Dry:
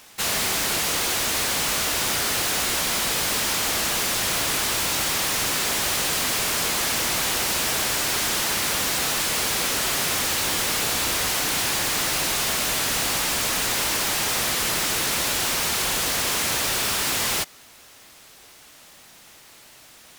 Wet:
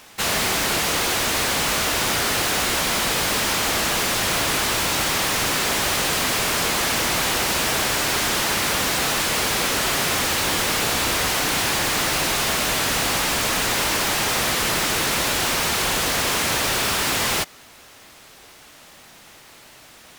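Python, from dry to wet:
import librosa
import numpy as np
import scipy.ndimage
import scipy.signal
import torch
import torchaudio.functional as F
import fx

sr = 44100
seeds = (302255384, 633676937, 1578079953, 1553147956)

y = fx.high_shelf(x, sr, hz=3800.0, db=-6.0)
y = F.gain(torch.from_numpy(y), 5.0).numpy()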